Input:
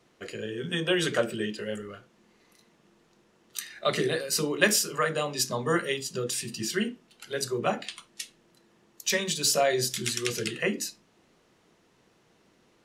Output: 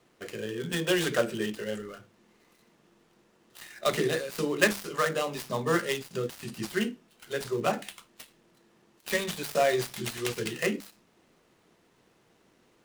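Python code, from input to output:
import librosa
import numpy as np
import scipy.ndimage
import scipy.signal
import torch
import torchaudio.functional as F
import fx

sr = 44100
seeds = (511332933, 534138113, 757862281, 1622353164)

y = fx.dead_time(x, sr, dead_ms=0.094)
y = fx.hum_notches(y, sr, base_hz=50, count=4)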